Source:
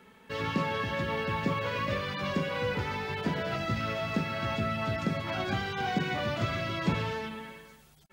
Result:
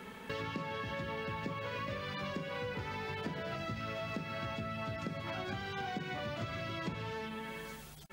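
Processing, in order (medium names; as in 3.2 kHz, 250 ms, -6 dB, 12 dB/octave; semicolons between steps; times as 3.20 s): compression 5:1, threshold -47 dBFS, peak gain reduction 21.5 dB; trim +8 dB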